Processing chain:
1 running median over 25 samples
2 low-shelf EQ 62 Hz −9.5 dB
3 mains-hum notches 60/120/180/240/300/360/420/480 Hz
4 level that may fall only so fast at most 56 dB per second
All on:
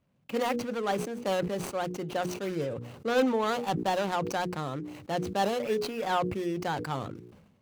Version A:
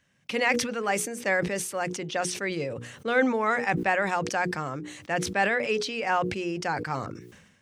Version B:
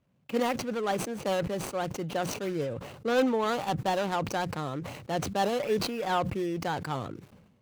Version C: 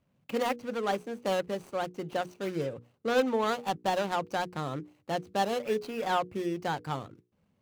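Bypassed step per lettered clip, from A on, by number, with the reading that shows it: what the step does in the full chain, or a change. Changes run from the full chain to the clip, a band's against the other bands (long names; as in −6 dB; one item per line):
1, 2 kHz band +9.0 dB
3, 8 kHz band +2.5 dB
4, 125 Hz band −3.0 dB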